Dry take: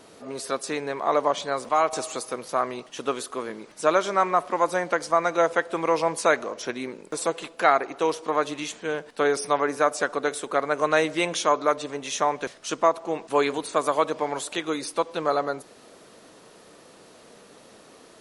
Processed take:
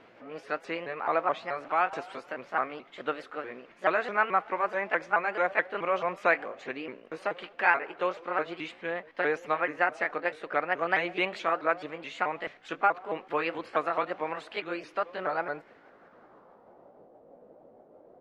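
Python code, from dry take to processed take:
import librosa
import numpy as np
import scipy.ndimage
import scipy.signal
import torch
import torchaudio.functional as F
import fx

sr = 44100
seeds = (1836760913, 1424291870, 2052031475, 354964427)

y = fx.pitch_ramps(x, sr, semitones=4.0, every_ms=215)
y = fx.filter_sweep_lowpass(y, sr, from_hz=2300.0, to_hz=630.0, start_s=15.52, end_s=17.12, q=1.9)
y = F.gain(torch.from_numpy(y), -5.5).numpy()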